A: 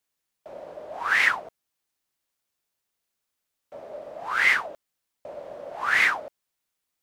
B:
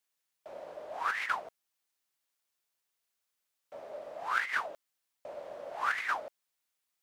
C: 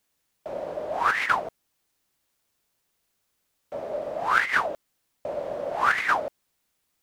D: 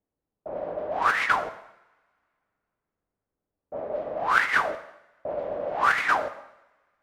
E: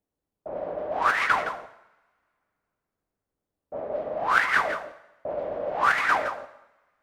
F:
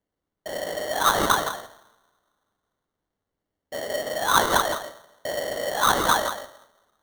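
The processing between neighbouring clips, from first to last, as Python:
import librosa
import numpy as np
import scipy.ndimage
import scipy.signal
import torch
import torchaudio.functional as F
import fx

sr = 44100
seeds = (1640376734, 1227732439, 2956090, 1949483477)

y1 = fx.low_shelf(x, sr, hz=430.0, db=-8.5)
y1 = fx.over_compress(y1, sr, threshold_db=-25.0, ratio=-0.5)
y1 = y1 * 10.0 ** (-5.5 / 20.0)
y2 = fx.low_shelf(y1, sr, hz=450.0, db=12.0)
y2 = y2 * 10.0 ** (8.0 / 20.0)
y3 = fx.env_lowpass(y2, sr, base_hz=590.0, full_db=-20.5)
y3 = fx.rev_double_slope(y3, sr, seeds[0], early_s=0.79, late_s=2.5, knee_db=-27, drr_db=9.0)
y4 = y3 + 10.0 ** (-10.5 / 20.0) * np.pad(y3, (int(166 * sr / 1000.0), 0))[:len(y3)]
y5 = fx.sample_hold(y4, sr, seeds[1], rate_hz=2500.0, jitter_pct=0)
y5 = y5 * 10.0 ** (2.0 / 20.0)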